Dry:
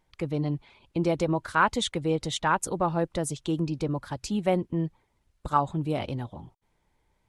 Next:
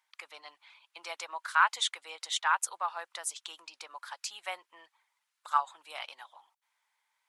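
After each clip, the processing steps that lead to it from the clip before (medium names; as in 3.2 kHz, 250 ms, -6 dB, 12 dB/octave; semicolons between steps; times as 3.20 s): high-pass 1 kHz 24 dB/octave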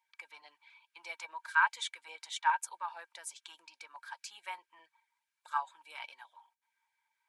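small resonant body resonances 930/1600/2300 Hz, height 14 dB, ringing for 50 ms; LFO notch saw down 4.8 Hz 380–1600 Hz; harmonic-percussive split percussive -3 dB; trim -5.5 dB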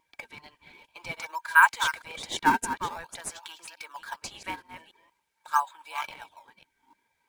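chunks repeated in reverse 289 ms, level -10.5 dB; wow and flutter 24 cents; in parallel at -8 dB: decimation with a swept rate 21×, swing 160% 0.48 Hz; on the sum: trim +6.5 dB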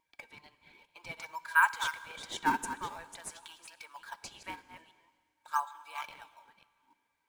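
plate-style reverb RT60 2 s, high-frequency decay 0.95×, DRR 15.5 dB; trim -7 dB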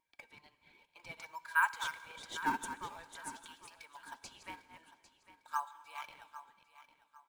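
feedback delay 801 ms, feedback 31%, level -14.5 dB; trim -5 dB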